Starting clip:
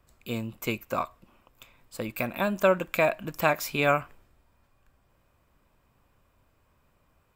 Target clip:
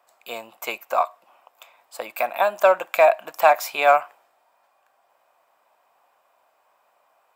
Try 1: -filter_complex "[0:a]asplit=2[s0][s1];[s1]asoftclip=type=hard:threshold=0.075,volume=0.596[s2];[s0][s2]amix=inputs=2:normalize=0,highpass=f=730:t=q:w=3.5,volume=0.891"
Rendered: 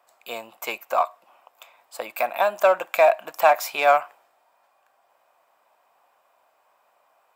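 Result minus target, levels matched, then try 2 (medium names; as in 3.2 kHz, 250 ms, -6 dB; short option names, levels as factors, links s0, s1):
hard clipper: distortion +11 dB
-filter_complex "[0:a]asplit=2[s0][s1];[s1]asoftclip=type=hard:threshold=0.2,volume=0.596[s2];[s0][s2]amix=inputs=2:normalize=0,highpass=f=730:t=q:w=3.5,volume=0.891"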